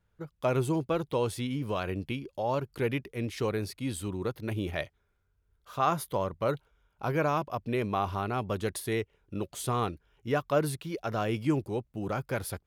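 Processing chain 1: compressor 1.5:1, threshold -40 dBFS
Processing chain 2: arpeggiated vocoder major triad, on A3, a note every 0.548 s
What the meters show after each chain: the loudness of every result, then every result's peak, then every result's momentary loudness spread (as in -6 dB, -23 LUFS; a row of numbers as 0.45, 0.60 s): -37.0, -33.0 LUFS; -20.0, -11.0 dBFS; 6, 10 LU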